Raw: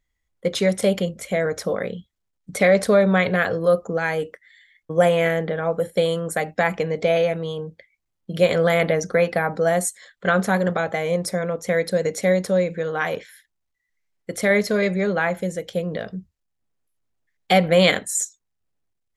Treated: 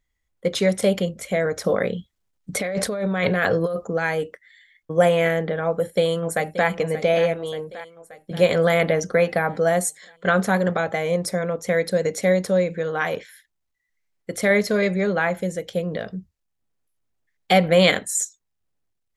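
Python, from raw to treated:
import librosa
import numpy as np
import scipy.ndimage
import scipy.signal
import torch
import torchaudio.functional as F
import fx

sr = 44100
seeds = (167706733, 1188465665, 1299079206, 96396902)

y = fx.over_compress(x, sr, threshold_db=-22.0, ratio=-1.0, at=(1.64, 3.85))
y = fx.echo_throw(y, sr, start_s=5.64, length_s=1.04, ms=580, feedback_pct=60, wet_db=-12.5)
y = fx.peak_eq(y, sr, hz=170.0, db=-8.5, octaves=0.6, at=(7.34, 8.31))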